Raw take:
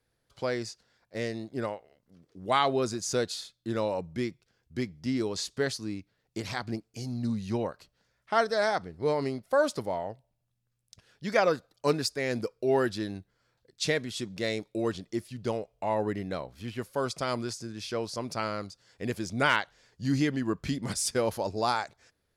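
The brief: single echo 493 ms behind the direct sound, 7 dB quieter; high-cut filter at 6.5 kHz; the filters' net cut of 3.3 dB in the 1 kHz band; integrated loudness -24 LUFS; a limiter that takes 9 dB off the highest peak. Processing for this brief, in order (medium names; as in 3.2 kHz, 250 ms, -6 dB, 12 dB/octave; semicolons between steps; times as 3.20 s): low-pass 6.5 kHz; peaking EQ 1 kHz -4.5 dB; peak limiter -21 dBFS; delay 493 ms -7 dB; trim +9.5 dB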